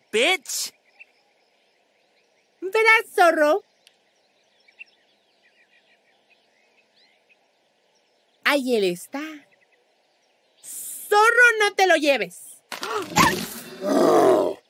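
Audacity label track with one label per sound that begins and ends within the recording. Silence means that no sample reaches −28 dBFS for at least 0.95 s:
2.630000	3.580000	sound
8.460000	9.290000	sound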